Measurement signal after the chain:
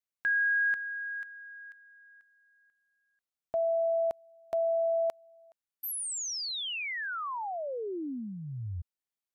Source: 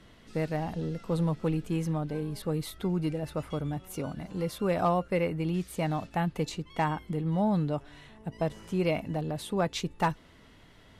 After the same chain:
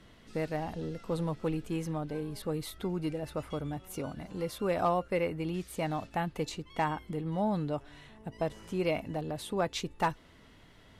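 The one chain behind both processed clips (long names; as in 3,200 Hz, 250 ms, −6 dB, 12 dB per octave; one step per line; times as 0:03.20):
dynamic equaliser 170 Hz, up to −5 dB, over −42 dBFS, Q 1.9
level −1.5 dB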